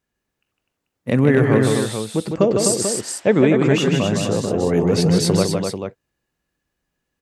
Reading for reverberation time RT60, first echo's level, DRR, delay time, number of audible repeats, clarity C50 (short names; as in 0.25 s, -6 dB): none, -5.0 dB, none, 0.155 s, 3, none